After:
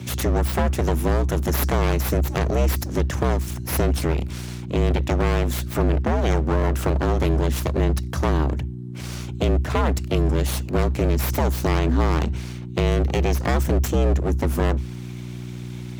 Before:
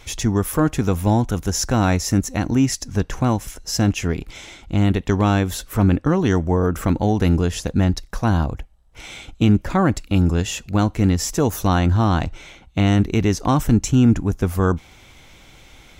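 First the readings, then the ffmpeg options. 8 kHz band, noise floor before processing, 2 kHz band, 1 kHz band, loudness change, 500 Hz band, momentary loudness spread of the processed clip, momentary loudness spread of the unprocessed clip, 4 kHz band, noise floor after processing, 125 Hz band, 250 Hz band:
-6.0 dB, -48 dBFS, -1.0 dB, -3.0 dB, -3.0 dB, +0.5 dB, 9 LU, 8 LU, -3.0 dB, -33 dBFS, -2.5 dB, -6.5 dB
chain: -af "aeval=exprs='abs(val(0))':c=same,acompressor=threshold=0.126:ratio=6,aeval=exprs='val(0)+0.0178*(sin(2*PI*60*n/s)+sin(2*PI*2*60*n/s)/2+sin(2*PI*3*60*n/s)/3+sin(2*PI*4*60*n/s)/4+sin(2*PI*5*60*n/s)/5)':c=same,afreqshift=66,volume=1.41"

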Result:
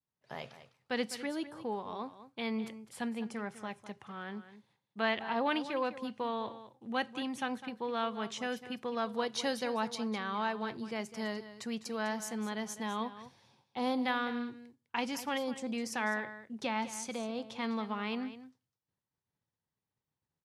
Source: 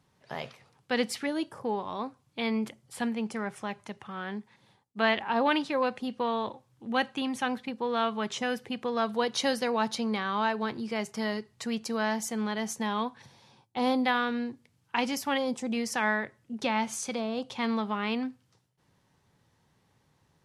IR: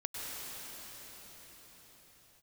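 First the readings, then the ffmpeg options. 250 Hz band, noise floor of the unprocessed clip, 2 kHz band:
-6.0 dB, -70 dBFS, -6.0 dB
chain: -filter_complex "[0:a]agate=range=0.0224:threshold=0.00158:ratio=3:detection=peak,asplit=2[s0][s1];[s1]aecho=0:1:204:0.211[s2];[s0][s2]amix=inputs=2:normalize=0,volume=0.501"

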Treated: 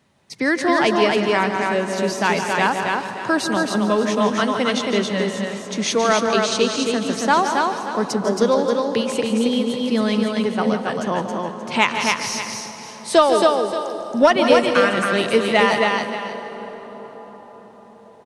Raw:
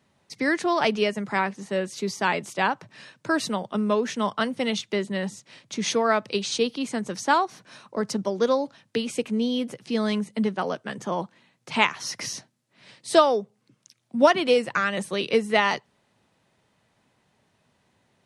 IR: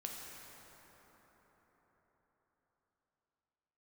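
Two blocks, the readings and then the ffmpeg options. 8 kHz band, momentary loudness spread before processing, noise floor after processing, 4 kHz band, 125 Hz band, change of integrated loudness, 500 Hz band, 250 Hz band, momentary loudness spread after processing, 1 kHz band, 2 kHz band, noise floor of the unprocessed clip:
+6.5 dB, 11 LU, -43 dBFS, +6.0 dB, +6.5 dB, +6.0 dB, +6.5 dB, +6.5 dB, 11 LU, +6.5 dB, +6.5 dB, -69 dBFS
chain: -filter_complex "[0:a]aecho=1:1:167|273|580:0.299|0.668|0.188,acontrast=35,asplit=2[s0][s1];[1:a]atrim=start_sample=2205,asetrate=32634,aresample=44100,adelay=146[s2];[s1][s2]afir=irnorm=-1:irlink=0,volume=0.316[s3];[s0][s3]amix=inputs=2:normalize=0,volume=0.891"

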